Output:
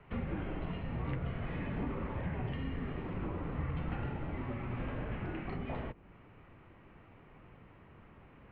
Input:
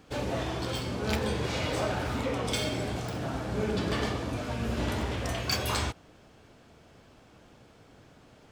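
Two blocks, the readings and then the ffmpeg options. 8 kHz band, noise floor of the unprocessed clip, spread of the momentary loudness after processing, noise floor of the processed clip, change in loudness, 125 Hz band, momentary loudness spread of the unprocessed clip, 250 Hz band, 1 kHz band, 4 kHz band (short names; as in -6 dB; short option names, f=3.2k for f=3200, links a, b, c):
under -40 dB, -57 dBFS, 20 LU, -58 dBFS, -8.0 dB, -4.5 dB, 4 LU, -6.0 dB, -10.0 dB, -22.0 dB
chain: -filter_complex "[0:a]acrossover=split=370|810[a][b][c];[a]acompressor=threshold=-36dB:ratio=4[d];[b]acompressor=threshold=-41dB:ratio=4[e];[c]acompressor=threshold=-47dB:ratio=4[f];[d][e][f]amix=inputs=3:normalize=0,highpass=f=170:t=q:w=0.5412,highpass=f=170:t=q:w=1.307,lowpass=f=2.9k:t=q:w=0.5176,lowpass=f=2.9k:t=q:w=0.7071,lowpass=f=2.9k:t=q:w=1.932,afreqshift=-350,volume=1dB"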